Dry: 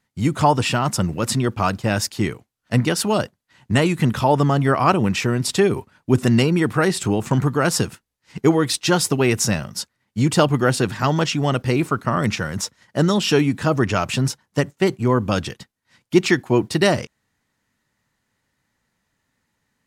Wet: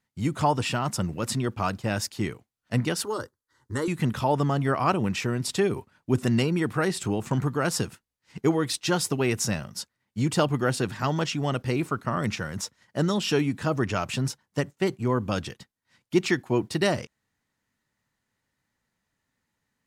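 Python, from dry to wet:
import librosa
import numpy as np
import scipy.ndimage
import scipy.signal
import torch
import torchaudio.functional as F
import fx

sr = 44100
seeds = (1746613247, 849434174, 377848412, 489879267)

y = fx.fixed_phaser(x, sr, hz=690.0, stages=6, at=(3.04, 3.88))
y = y * 10.0 ** (-7.0 / 20.0)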